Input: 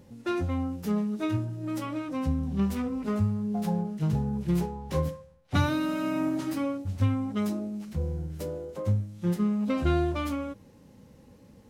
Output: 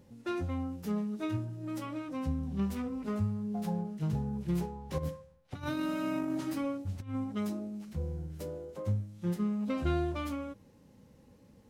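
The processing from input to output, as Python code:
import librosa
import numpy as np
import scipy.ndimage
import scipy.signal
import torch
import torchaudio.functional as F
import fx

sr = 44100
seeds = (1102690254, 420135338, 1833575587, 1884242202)

y = fx.over_compress(x, sr, threshold_db=-28.0, ratio=-0.5, at=(4.98, 7.24))
y = F.gain(torch.from_numpy(y), -5.5).numpy()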